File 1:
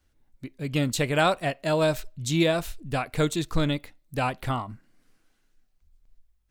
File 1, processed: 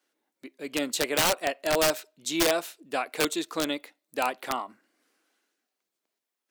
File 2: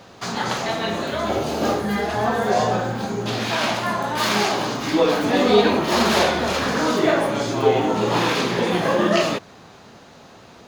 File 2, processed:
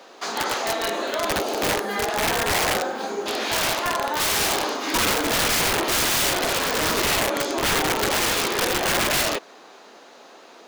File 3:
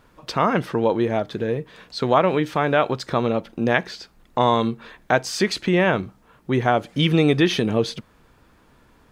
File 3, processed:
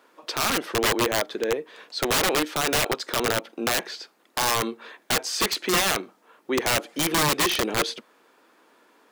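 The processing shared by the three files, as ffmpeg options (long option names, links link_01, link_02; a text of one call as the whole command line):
ffmpeg -i in.wav -af "highpass=frequency=300:width=0.5412,highpass=frequency=300:width=1.3066,aeval=exprs='(mod(6.31*val(0)+1,2)-1)/6.31':channel_layout=same" out.wav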